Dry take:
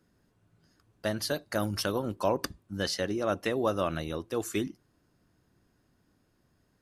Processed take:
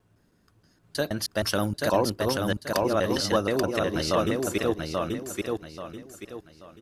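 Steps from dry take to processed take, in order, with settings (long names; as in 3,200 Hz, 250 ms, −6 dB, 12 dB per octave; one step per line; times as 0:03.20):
slices reordered back to front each 158 ms, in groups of 3
repeating echo 834 ms, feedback 32%, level −3 dB
level +4 dB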